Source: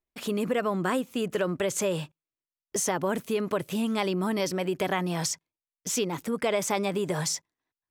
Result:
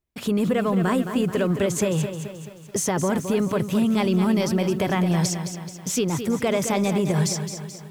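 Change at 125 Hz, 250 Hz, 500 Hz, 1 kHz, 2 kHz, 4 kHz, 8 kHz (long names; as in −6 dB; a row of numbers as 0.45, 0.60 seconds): +10.5, +8.5, +4.0, +3.0, +2.5, +2.5, +3.0 decibels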